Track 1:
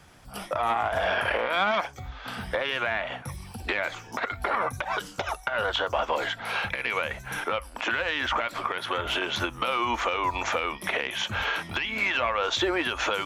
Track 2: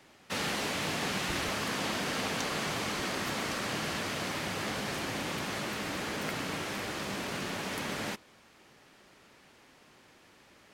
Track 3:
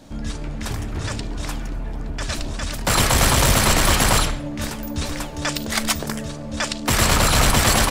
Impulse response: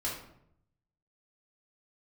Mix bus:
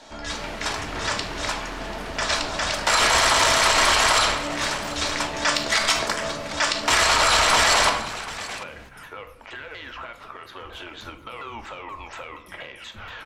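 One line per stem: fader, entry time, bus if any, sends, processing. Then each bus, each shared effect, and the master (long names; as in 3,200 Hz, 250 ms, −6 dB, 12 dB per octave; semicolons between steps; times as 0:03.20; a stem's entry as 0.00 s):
−13.0 dB, 1.65 s, send −7.5 dB, echo send −21 dB, sub-octave generator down 2 octaves, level −4 dB; pitch modulation by a square or saw wave saw down 4.2 Hz, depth 250 cents
−3.5 dB, 0.00 s, no send, echo send −7 dB, high-shelf EQ 5,200 Hz −9 dB
+2.5 dB, 0.00 s, send −4 dB, echo send −16 dB, three-way crossover with the lows and the highs turned down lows −20 dB, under 490 Hz, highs −21 dB, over 7,900 Hz; notch filter 540 Hz, Q 12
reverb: on, RT60 0.70 s, pre-delay 3 ms
echo: single-tap delay 738 ms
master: brickwall limiter −8.5 dBFS, peak gain reduction 8 dB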